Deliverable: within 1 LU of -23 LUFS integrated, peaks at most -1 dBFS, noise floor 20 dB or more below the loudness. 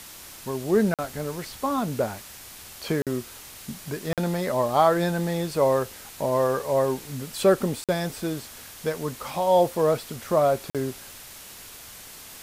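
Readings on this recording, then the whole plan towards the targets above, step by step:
dropouts 5; longest dropout 47 ms; noise floor -44 dBFS; noise floor target -46 dBFS; loudness -25.5 LUFS; peak level -7.0 dBFS; loudness target -23.0 LUFS
-> interpolate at 0.94/3.02/4.13/7.84/10.70 s, 47 ms; noise print and reduce 6 dB; trim +2.5 dB

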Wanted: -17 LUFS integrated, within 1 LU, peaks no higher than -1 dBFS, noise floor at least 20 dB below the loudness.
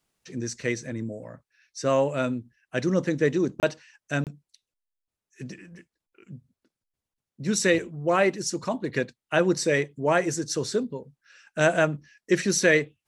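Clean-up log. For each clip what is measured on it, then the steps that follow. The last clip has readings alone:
dropouts 2; longest dropout 28 ms; loudness -25.5 LUFS; peak level -7.0 dBFS; loudness target -17.0 LUFS
-> interpolate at 3.60/4.24 s, 28 ms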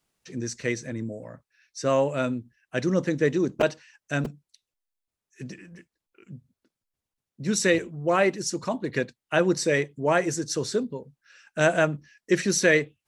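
dropouts 0; loudness -25.5 LUFS; peak level -7.0 dBFS; loudness target -17.0 LUFS
-> trim +8.5 dB; peak limiter -1 dBFS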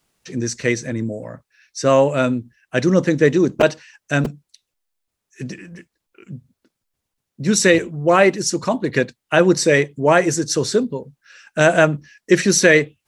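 loudness -17.5 LUFS; peak level -1.0 dBFS; noise floor -80 dBFS

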